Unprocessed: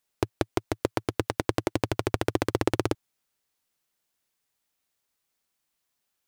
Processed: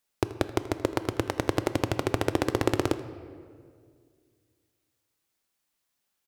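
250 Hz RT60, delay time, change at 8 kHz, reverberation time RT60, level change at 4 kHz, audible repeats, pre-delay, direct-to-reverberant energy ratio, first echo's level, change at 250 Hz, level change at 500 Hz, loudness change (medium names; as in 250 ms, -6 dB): 2.5 s, 81 ms, 0.0 dB, 2.1 s, +0.5 dB, 1, 3 ms, 10.5 dB, -18.5 dB, +1.0 dB, +0.5 dB, +0.5 dB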